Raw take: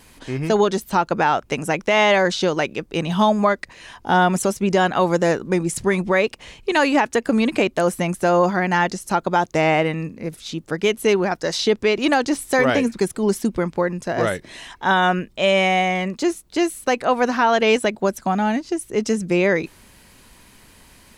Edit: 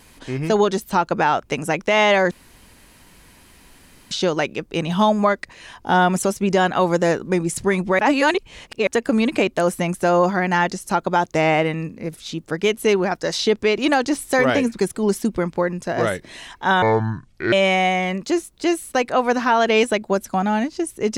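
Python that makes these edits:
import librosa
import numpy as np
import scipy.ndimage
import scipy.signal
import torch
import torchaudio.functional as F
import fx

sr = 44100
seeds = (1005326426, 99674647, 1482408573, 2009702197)

y = fx.edit(x, sr, fx.insert_room_tone(at_s=2.31, length_s=1.8),
    fx.reverse_span(start_s=6.19, length_s=0.88),
    fx.speed_span(start_s=15.02, length_s=0.43, speed=0.61), tone=tone)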